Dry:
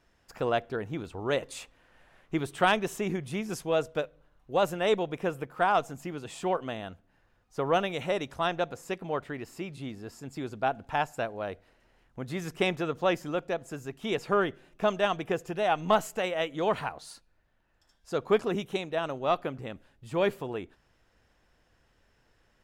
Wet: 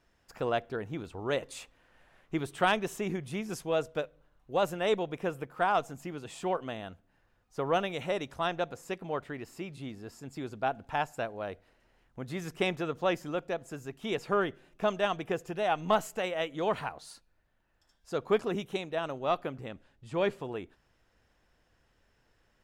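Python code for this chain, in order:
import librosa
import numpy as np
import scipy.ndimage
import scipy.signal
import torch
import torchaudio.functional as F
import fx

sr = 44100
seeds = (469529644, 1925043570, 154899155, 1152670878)

y = fx.lowpass(x, sr, hz=8500.0, slope=12, at=(19.69, 20.42))
y = y * 10.0 ** (-2.5 / 20.0)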